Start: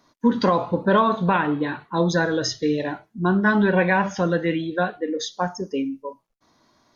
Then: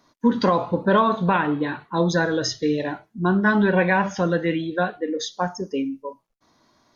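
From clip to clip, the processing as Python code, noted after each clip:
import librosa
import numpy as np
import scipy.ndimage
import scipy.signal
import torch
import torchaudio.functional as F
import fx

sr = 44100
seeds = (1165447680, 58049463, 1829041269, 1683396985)

y = x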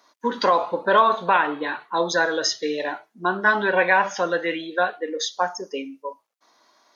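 y = scipy.signal.sosfilt(scipy.signal.butter(2, 540.0, 'highpass', fs=sr, output='sos'), x)
y = y * librosa.db_to_amplitude(3.5)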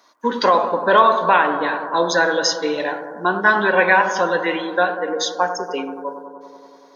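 y = fx.echo_bbd(x, sr, ms=95, stages=1024, feedback_pct=79, wet_db=-10.0)
y = y * librosa.db_to_amplitude(3.5)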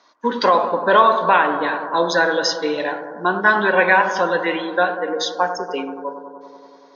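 y = scipy.signal.sosfilt(scipy.signal.butter(4, 5900.0, 'lowpass', fs=sr, output='sos'), x)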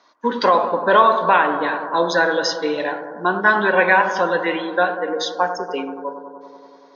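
y = fx.high_shelf(x, sr, hz=5500.0, db=-4.5)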